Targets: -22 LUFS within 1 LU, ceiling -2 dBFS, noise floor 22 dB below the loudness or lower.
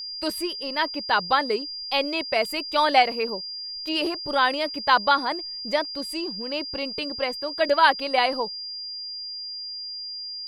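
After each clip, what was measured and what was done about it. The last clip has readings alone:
steady tone 4.8 kHz; tone level -32 dBFS; loudness -24.5 LUFS; peak level -7.0 dBFS; loudness target -22.0 LUFS
-> band-stop 4.8 kHz, Q 30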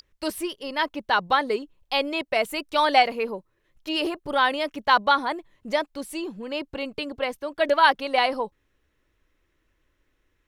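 steady tone not found; loudness -24.5 LUFS; peak level -7.0 dBFS; loudness target -22.0 LUFS
-> trim +2.5 dB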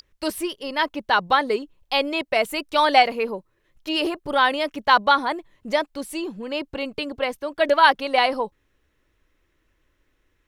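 loudness -22.0 LUFS; peak level -4.5 dBFS; noise floor -69 dBFS

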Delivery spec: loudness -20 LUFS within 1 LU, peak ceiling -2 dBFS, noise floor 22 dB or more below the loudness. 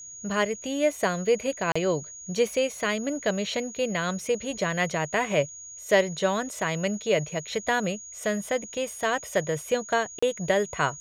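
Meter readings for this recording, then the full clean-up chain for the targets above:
dropouts 2; longest dropout 35 ms; steady tone 6.7 kHz; tone level -40 dBFS; loudness -27.0 LUFS; peak level -9.5 dBFS; loudness target -20.0 LUFS
-> interpolate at 1.72/10.19 s, 35 ms; band-stop 6.7 kHz, Q 30; trim +7 dB

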